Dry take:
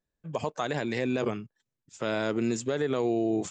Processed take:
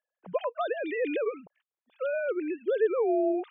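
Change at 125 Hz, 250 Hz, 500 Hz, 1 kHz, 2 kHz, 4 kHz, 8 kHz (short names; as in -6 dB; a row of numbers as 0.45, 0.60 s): under -20 dB, -3.5 dB, +2.5 dB, -0.5 dB, -1.0 dB, n/a, under -40 dB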